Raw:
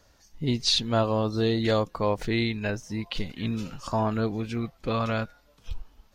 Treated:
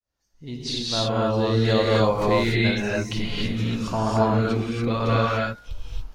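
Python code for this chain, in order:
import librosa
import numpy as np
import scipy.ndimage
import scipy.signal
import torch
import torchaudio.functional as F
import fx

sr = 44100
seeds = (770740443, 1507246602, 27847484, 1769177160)

y = fx.fade_in_head(x, sr, length_s=1.68)
y = fx.rev_gated(y, sr, seeds[0], gate_ms=310, shape='rising', drr_db=-5.5)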